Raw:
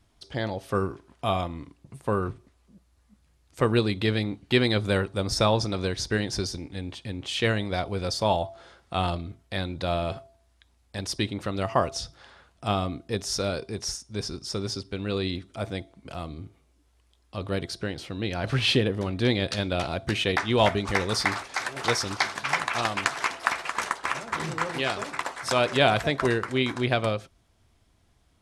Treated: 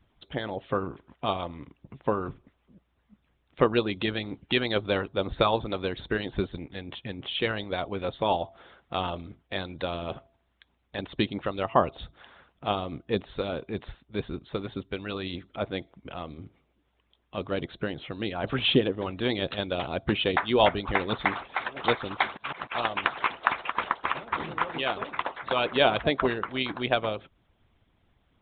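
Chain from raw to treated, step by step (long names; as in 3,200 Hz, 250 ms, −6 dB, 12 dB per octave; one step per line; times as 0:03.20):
downsampling to 8,000 Hz
dynamic equaliser 1,900 Hz, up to −5 dB, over −42 dBFS, Q 1.7
0:22.25–0:22.72: volume swells 148 ms
harmonic and percussive parts rebalanced harmonic −14 dB
level +3.5 dB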